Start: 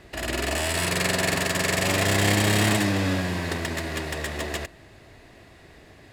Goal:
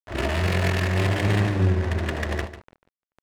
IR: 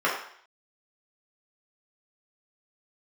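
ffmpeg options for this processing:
-af "lowpass=6300,equalizer=frequency=93:width_type=o:width=0.37:gain=14.5,bandreject=frequency=50:width_type=h:width=6,bandreject=frequency=100:width_type=h:width=6,bandreject=frequency=150:width_type=h:width=6,bandreject=frequency=200:width_type=h:width=6,bandreject=frequency=250:width_type=h:width=6,dynaudnorm=framelen=160:gausssize=3:maxgain=14dB,acrusher=bits=3:mix=0:aa=0.000001,adynamicsmooth=sensitivity=1:basefreq=610,tremolo=f=280:d=0.667,aeval=exprs='sgn(val(0))*max(abs(val(0))-0.00631,0)':channel_layout=same,atempo=1.9,aecho=1:1:145:0.237,volume=-6.5dB"

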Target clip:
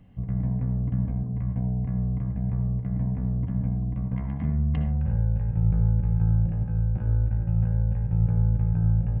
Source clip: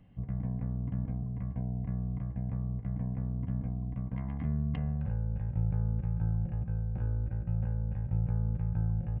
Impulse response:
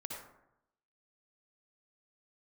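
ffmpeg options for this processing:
-filter_complex "[0:a]asplit=2[link_01][link_02];[1:a]atrim=start_sample=2205,afade=type=out:start_time=0.2:duration=0.01,atrim=end_sample=9261,lowshelf=frequency=340:gain=5.5[link_03];[link_02][link_03]afir=irnorm=-1:irlink=0,volume=-0.5dB[link_04];[link_01][link_04]amix=inputs=2:normalize=0"

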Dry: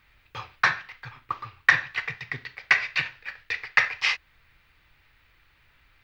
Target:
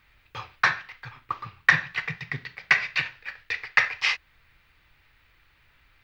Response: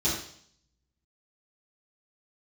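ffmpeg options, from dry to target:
-filter_complex "[0:a]asettb=1/sr,asplit=3[link_01][link_02][link_03];[link_01]atrim=end=1.464[link_04];[link_02]atrim=start=1.46:end=2.97,asetpts=PTS-STARTPTS,afade=type=in:duration=0.004:curve=qsin,afade=type=out:start_time=1.506:duration=0.004:curve=qsin,equalizer=frequency=170:width_type=o:width=0.53:gain=12[link_05];[link_03]atrim=start=2.966[link_06];[link_04][link_05]acrossfade=duration=0.004:curve1=hsin:curve2=qsin[link_07];[link_07][link_06]acrossfade=duration=0.004:curve1=qsin:curve2=hsin"

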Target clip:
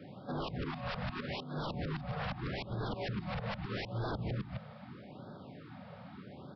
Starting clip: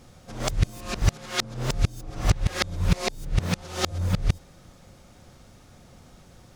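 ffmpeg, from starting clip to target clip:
ffmpeg -i in.wav -af "alimiter=limit=-20dB:level=0:latency=1:release=306,highpass=110,lowpass=4000,afreqshift=28,aecho=1:1:260:0.447,aresample=11025,aeval=exprs='0.0188*(abs(mod(val(0)/0.0188+3,4)-2)-1)':channel_layout=same,aresample=44100,aemphasis=mode=reproduction:type=75fm,afftfilt=real='re*(1-between(b*sr/1024,300*pow(2400/300,0.5+0.5*sin(2*PI*0.8*pts/sr))/1.41,300*pow(2400/300,0.5+0.5*sin(2*PI*0.8*pts/sr))*1.41))':imag='im*(1-between(b*sr/1024,300*pow(2400/300,0.5+0.5*sin(2*PI*0.8*pts/sr))/1.41,300*pow(2400/300,0.5+0.5*sin(2*PI*0.8*pts/sr))*1.41))':win_size=1024:overlap=0.75,volume=3.5dB" out.wav

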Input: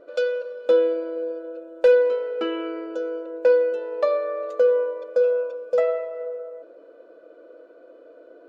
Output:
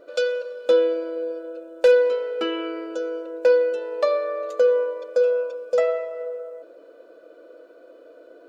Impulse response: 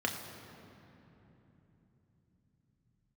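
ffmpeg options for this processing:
-af "highshelf=frequency=3400:gain=11.5"

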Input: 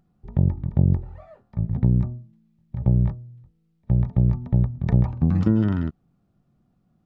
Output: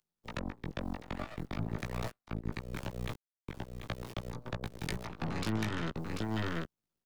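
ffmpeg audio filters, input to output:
ffmpeg -i in.wav -filter_complex "[0:a]tiltshelf=frequency=1500:gain=-7,acompressor=threshold=-37dB:ratio=4,highpass=87,bandreject=frequency=60:width_type=h:width=6,bandreject=frequency=120:width_type=h:width=6,bandreject=frequency=180:width_type=h:width=6,asettb=1/sr,asplit=3[link_01][link_02][link_03];[link_01]atrim=end=1.784[link_04];[link_02]atrim=start=1.78:end=4.31,asetpts=PTS-STARTPTS,afade=type=in:duration=0.004:curve=qsin,afade=type=out:start_time=2.526:duration=0.004:curve=qsin,aeval=exprs='val(0)*gte(abs(val(0)),0.00531)':channel_layout=same[link_05];[link_03]atrim=start=4.306[link_06];[link_04][link_05]acrossfade=duration=0.004:curve1=hsin:curve2=qsin[link_07];[link_07][link_06]acrossfade=duration=0.004:curve1=qsin:curve2=hsin,aecho=1:1:739:0.668,aeval=exprs='0.0376*(cos(1*acos(clip(val(0)/0.0376,-1,1)))-cos(1*PI/2))+0.00668*(cos(4*acos(clip(val(0)/0.0376,-1,1)))-cos(4*PI/2))+0.00531*(cos(7*acos(clip(val(0)/0.0376,-1,1)))-cos(7*PI/2))':channel_layout=same,acrossover=split=210|480[link_08][link_09][link_10];[link_08]acompressor=threshold=-45dB:ratio=4[link_11];[link_09]acompressor=threshold=-53dB:ratio=4[link_12];[link_10]acompressor=threshold=-51dB:ratio=4[link_13];[link_11][link_12][link_13]amix=inputs=3:normalize=0,alimiter=level_in=14.5dB:limit=-24dB:level=0:latency=1:release=208,volume=-14.5dB,highshelf=frequency=2000:gain=9,asplit=2[link_14][link_15];[link_15]adelay=18,volume=-2.5dB[link_16];[link_14][link_16]amix=inputs=2:normalize=0,volume=12dB" out.wav

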